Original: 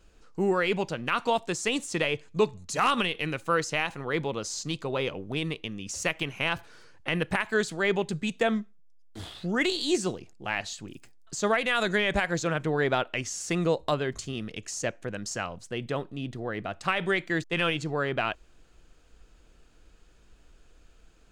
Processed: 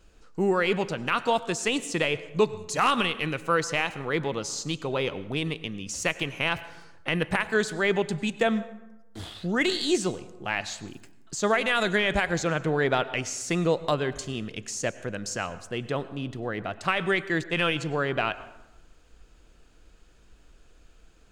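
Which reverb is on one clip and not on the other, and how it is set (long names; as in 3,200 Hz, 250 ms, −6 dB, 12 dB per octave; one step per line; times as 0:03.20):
dense smooth reverb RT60 1 s, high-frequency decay 0.55×, pre-delay 85 ms, DRR 15.5 dB
level +1.5 dB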